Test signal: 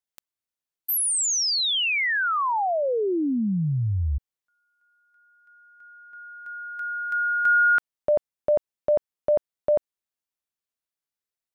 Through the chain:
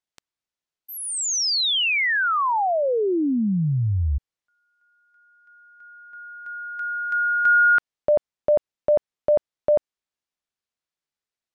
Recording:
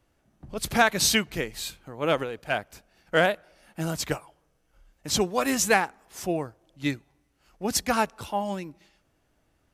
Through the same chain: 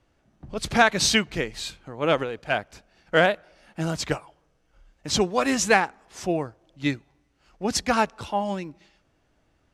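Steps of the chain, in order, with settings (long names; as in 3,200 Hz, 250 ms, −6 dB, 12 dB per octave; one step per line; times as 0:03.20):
low-pass filter 6,800 Hz 12 dB per octave
level +2.5 dB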